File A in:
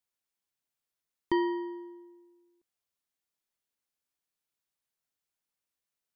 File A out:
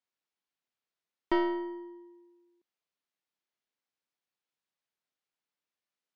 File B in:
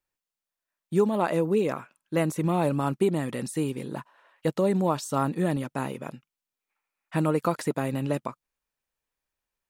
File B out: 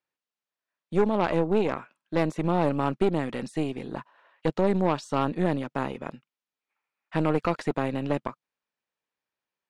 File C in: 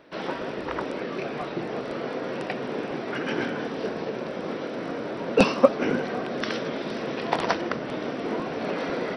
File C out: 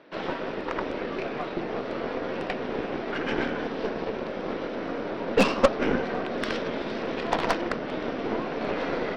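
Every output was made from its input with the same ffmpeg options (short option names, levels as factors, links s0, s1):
-af "highpass=150,lowpass=4600,asoftclip=type=tanh:threshold=0.316,aeval=exprs='0.316*(cos(1*acos(clip(val(0)/0.316,-1,1)))-cos(1*PI/2))+0.141*(cos(2*acos(clip(val(0)/0.316,-1,1)))-cos(2*PI/2))+0.126*(cos(4*acos(clip(val(0)/0.316,-1,1)))-cos(4*PI/2))+0.112*(cos(6*acos(clip(val(0)/0.316,-1,1)))-cos(6*PI/2))+0.0224*(cos(8*acos(clip(val(0)/0.316,-1,1)))-cos(8*PI/2))':c=same"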